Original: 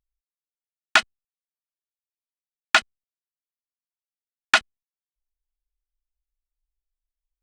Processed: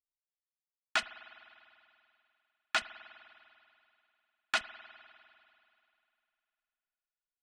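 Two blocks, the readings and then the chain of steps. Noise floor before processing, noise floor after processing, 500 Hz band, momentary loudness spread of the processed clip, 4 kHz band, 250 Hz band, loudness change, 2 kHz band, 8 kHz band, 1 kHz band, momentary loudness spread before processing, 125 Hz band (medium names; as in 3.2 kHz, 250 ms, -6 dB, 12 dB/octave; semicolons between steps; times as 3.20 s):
under -85 dBFS, under -85 dBFS, -11.5 dB, 19 LU, -12.5 dB, -13.5 dB, -14.0 dB, -13.5 dB, -13.0 dB, -13.5 dB, 0 LU, no reading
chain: peak limiter -11 dBFS, peak gain reduction 9 dB; gate -43 dBFS, range -21 dB; spring tank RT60 2.7 s, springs 49 ms, chirp 60 ms, DRR 13.5 dB; trim -6.5 dB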